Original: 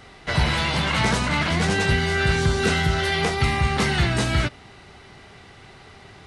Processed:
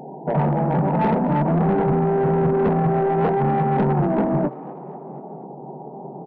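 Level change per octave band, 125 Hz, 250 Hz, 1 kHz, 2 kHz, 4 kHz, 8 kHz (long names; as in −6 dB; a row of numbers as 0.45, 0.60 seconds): +1.5 dB, +6.0 dB, +5.0 dB, −13.5 dB, below −25 dB, below −40 dB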